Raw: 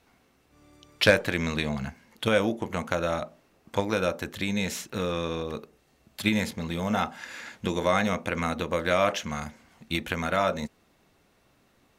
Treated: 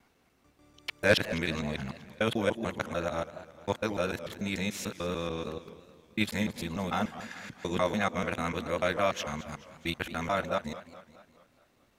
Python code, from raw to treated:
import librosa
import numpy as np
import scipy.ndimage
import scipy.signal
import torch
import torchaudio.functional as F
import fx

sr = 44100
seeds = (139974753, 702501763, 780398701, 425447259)

y = fx.local_reverse(x, sr, ms=147.0)
y = fx.echo_warbled(y, sr, ms=212, feedback_pct=52, rate_hz=2.8, cents=190, wet_db=-15.5)
y = y * 10.0 ** (-4.0 / 20.0)